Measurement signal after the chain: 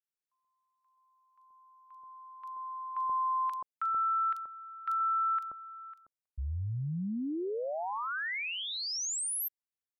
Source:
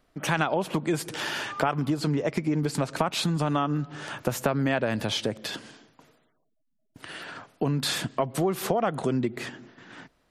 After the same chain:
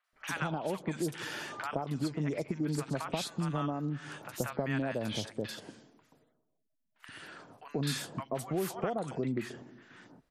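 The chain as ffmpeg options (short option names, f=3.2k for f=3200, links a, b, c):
-filter_complex "[0:a]acrossover=split=920|3400[a][b][c];[c]adelay=40[d];[a]adelay=130[e];[e][b][d]amix=inputs=3:normalize=0,volume=-7dB"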